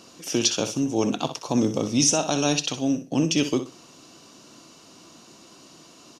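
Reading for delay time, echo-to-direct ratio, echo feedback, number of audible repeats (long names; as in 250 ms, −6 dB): 62 ms, −10.5 dB, 22%, 2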